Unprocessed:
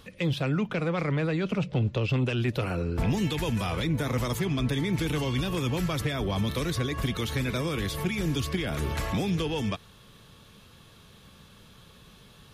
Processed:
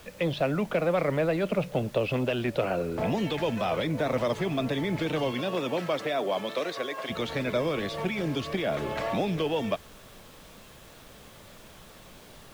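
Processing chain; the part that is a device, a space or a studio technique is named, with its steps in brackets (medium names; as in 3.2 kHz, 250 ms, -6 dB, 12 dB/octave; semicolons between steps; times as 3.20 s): horn gramophone (band-pass 180–4100 Hz; peaking EQ 620 Hz +11 dB 0.56 oct; wow and flutter; pink noise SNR 22 dB); 5.31–7.09 s: high-pass 150 Hz -> 510 Hz 12 dB/octave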